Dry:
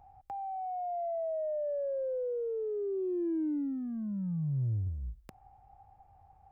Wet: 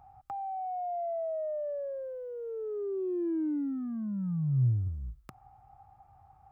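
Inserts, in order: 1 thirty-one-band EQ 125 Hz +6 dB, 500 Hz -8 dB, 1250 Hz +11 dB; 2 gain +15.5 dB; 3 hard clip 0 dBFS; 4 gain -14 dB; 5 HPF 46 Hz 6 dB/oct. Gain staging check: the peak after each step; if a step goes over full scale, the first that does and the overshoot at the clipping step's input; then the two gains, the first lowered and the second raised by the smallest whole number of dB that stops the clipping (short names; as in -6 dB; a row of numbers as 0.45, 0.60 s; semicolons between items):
-21.0, -5.5, -5.5, -19.5, -20.0 dBFS; no overload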